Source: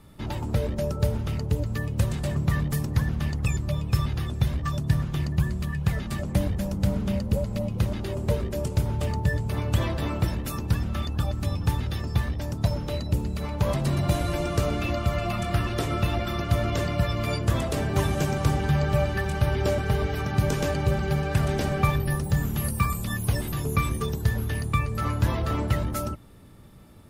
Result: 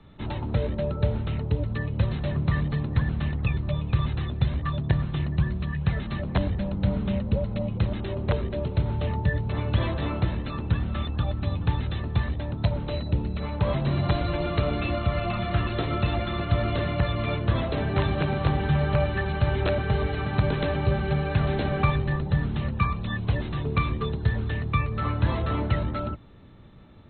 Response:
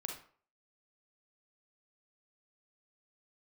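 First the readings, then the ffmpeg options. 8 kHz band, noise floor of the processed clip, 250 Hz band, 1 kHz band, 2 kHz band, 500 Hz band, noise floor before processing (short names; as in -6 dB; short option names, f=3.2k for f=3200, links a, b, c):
under -40 dB, -33 dBFS, 0.0 dB, 0.0 dB, +0.5 dB, 0.0 dB, -33 dBFS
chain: -filter_complex "[0:a]acrossover=split=140|1000|6200[a][b][c][d];[b]aeval=exprs='(mod(7.94*val(0)+1,2)-1)/7.94':c=same[e];[a][e][c][d]amix=inputs=4:normalize=0" -ar 16000 -c:a mp2 -b:a 32k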